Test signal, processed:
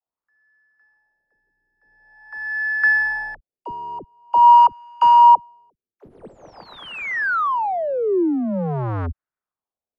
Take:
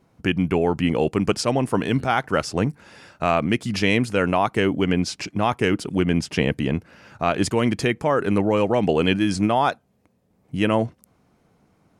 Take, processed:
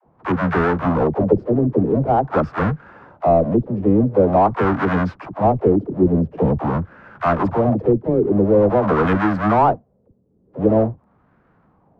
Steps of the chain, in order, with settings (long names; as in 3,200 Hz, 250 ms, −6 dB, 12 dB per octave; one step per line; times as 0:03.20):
each half-wave held at its own peak
auto-filter low-pass sine 0.46 Hz 370–1,500 Hz
all-pass dispersion lows, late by 60 ms, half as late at 340 Hz
level −2.5 dB